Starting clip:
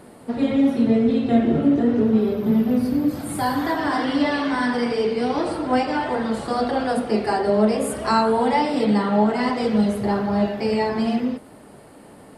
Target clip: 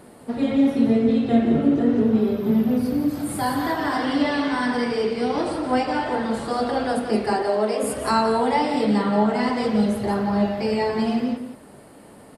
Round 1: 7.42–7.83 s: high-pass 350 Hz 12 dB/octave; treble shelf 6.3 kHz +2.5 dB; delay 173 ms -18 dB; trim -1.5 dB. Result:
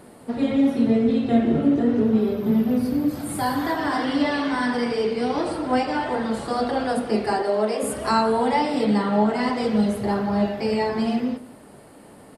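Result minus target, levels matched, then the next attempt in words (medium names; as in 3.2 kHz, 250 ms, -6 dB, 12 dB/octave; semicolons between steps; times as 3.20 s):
echo-to-direct -9.5 dB
7.42–7.83 s: high-pass 350 Hz 12 dB/octave; treble shelf 6.3 kHz +2.5 dB; delay 173 ms -8.5 dB; trim -1.5 dB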